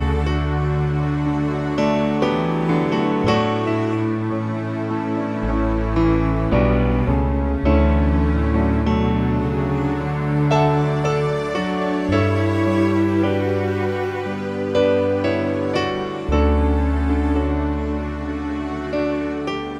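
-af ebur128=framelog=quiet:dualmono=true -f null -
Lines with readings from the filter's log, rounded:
Integrated loudness:
  I:         -17.0 LUFS
  Threshold: -27.0 LUFS
Loudness range:
  LRA:         2.5 LU
  Threshold: -36.8 LUFS
  LRA low:   -18.0 LUFS
  LRA high:  -15.5 LUFS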